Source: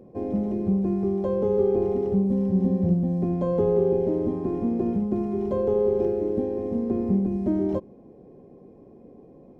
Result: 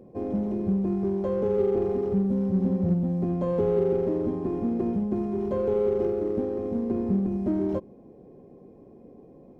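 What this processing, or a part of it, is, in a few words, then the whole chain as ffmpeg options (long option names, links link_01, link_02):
parallel distortion: -filter_complex "[0:a]asplit=2[link_01][link_02];[link_02]asoftclip=type=hard:threshold=-27.5dB,volume=-11dB[link_03];[link_01][link_03]amix=inputs=2:normalize=0,volume=-3dB"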